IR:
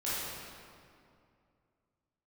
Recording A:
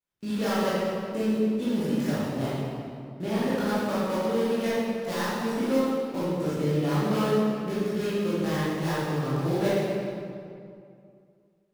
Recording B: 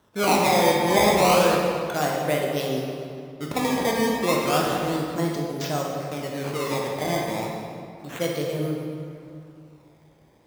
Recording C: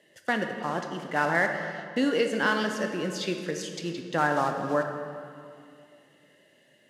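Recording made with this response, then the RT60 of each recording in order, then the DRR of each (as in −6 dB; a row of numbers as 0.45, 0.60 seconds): A; 2.4, 2.4, 2.4 seconds; −11.0, −1.5, 4.5 decibels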